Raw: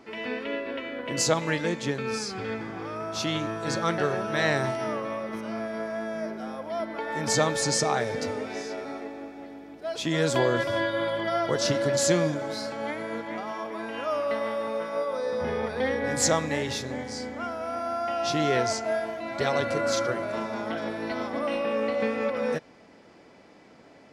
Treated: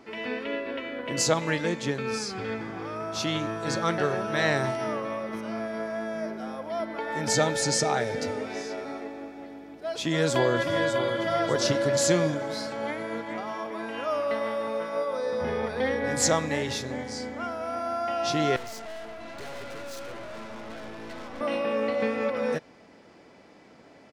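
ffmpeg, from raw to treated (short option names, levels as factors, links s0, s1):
-filter_complex "[0:a]asettb=1/sr,asplit=3[s0][s1][s2];[s0]atrim=end=7.214[s3];[s1]atrim=start=7.21:end=8.42,asetpts=PTS-STARTPTS,afade=t=in:d=0.004:c=qsin,afade=t=out:st=1.206:d=0.004:c=qsin,asuperstop=centerf=1100:order=4:qfactor=7.1[s4];[s2]atrim=start=8.416[s5];[s3][s4]acrossfade=d=0.004:c1=hsin:c2=qsin[s6];[s6][s5]acrossfade=d=0.004:c1=qsin:c2=hsin,asplit=2[s7][s8];[s8]afade=t=in:st=10.01:d=0.01,afade=t=out:st=11.18:d=0.01,aecho=0:1:600|1200|1800|2400|3000|3600:0.375837|0.187919|0.0939594|0.0469797|0.0234898|0.0117449[s9];[s7][s9]amix=inputs=2:normalize=0,asettb=1/sr,asplit=3[s10][s11][s12];[s10]atrim=end=18.564[s13];[s11]atrim=start=18.56:end=21.41,asetpts=PTS-STARTPTS,afade=t=in:d=0.004:c=qsin,afade=t=out:st=2.846:d=0.004:c=qsin,aeval=exprs='(tanh(79.4*val(0)+0.8)-tanh(0.8))/79.4':c=same[s14];[s12]atrim=start=21.406[s15];[s13][s14]acrossfade=d=0.004:c1=hsin:c2=qsin[s16];[s16][s15]acrossfade=d=0.004:c1=qsin:c2=hsin"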